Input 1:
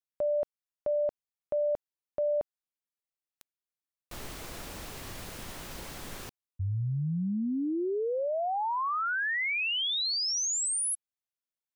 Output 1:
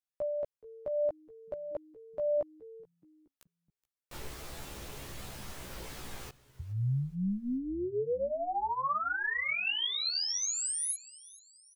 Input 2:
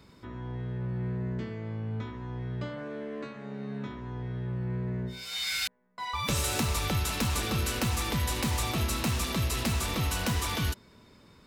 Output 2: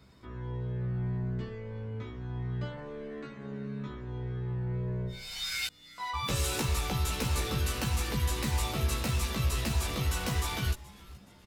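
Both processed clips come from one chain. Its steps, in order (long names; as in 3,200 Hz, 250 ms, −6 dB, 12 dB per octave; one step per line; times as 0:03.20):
echo with shifted repeats 424 ms, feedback 45%, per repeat −140 Hz, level −20.5 dB
multi-voice chorus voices 4, 0.21 Hz, delay 15 ms, depth 1.4 ms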